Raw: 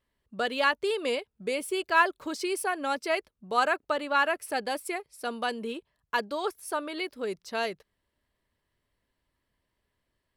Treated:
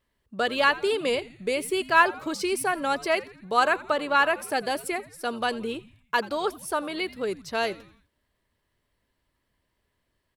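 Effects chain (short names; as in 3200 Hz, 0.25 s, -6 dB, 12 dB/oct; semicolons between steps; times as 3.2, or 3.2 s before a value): frequency-shifting echo 85 ms, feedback 50%, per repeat -120 Hz, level -19 dB; gain +3.5 dB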